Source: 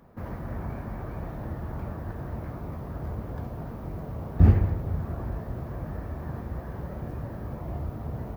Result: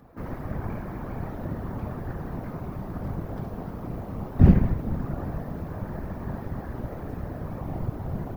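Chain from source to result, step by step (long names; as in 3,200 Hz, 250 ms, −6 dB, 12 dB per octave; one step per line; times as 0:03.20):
random phases in short frames
level +2 dB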